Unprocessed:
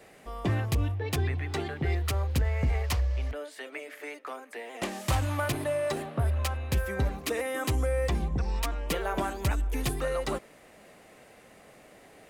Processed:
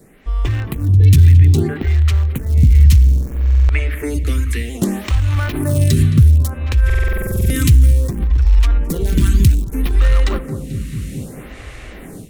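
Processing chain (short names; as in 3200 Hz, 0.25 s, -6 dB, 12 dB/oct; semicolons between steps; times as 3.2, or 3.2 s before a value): darkening echo 0.218 s, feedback 69%, low-pass 3800 Hz, level -15.5 dB; in parallel at -11.5 dB: bit-crush 4-bit; on the sum: compressor, threshold -26 dBFS, peak gain reduction 7 dB; low shelf 470 Hz +12 dB; AGC gain up to 14 dB; passive tone stack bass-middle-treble 6-0-2; notch 4800 Hz, Q 17; stuck buffer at 3.04/6.85, samples 2048, times 13; maximiser +25.5 dB; photocell phaser 0.62 Hz; gain -1 dB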